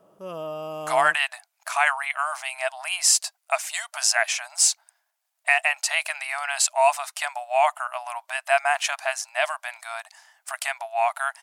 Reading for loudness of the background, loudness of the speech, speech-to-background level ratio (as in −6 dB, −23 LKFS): −34.5 LKFS, −23.5 LKFS, 11.0 dB